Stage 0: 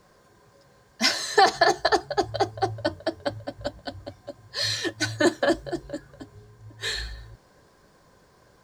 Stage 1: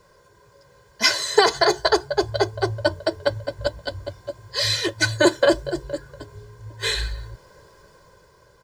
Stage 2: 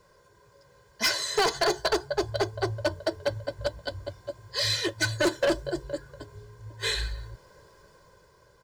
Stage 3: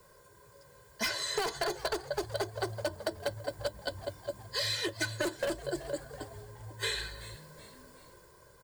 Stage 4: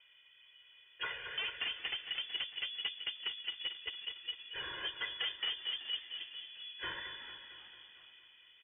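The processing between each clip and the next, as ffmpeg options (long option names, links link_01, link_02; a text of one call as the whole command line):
ffmpeg -i in.wav -af "aecho=1:1:2:0.67,dynaudnorm=framelen=190:gausssize=9:maxgain=5dB" out.wav
ffmpeg -i in.wav -af "volume=14.5dB,asoftclip=hard,volume=-14.5dB,volume=-4.5dB" out.wav
ffmpeg -i in.wav -filter_complex "[0:a]aexciter=amount=2.4:drive=7.3:freq=7800,asplit=4[link_01][link_02][link_03][link_04];[link_02]adelay=375,afreqshift=100,volume=-22dB[link_05];[link_03]adelay=750,afreqshift=200,volume=-29.3dB[link_06];[link_04]adelay=1125,afreqshift=300,volume=-36.7dB[link_07];[link_01][link_05][link_06][link_07]amix=inputs=4:normalize=0,acrossover=split=130|5600[link_08][link_09][link_10];[link_08]acompressor=threshold=-50dB:ratio=4[link_11];[link_09]acompressor=threshold=-31dB:ratio=4[link_12];[link_10]acompressor=threshold=-47dB:ratio=4[link_13];[link_11][link_12][link_13]amix=inputs=3:normalize=0" out.wav
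ffmpeg -i in.wav -af "aeval=exprs='clip(val(0),-1,0.0282)':channel_layout=same,aecho=1:1:226|452|678|904|1130|1356|1582:0.316|0.19|0.114|0.0683|0.041|0.0246|0.0148,lowpass=frequency=3000:width_type=q:width=0.5098,lowpass=frequency=3000:width_type=q:width=0.6013,lowpass=frequency=3000:width_type=q:width=0.9,lowpass=frequency=3000:width_type=q:width=2.563,afreqshift=-3500,volume=-4dB" out.wav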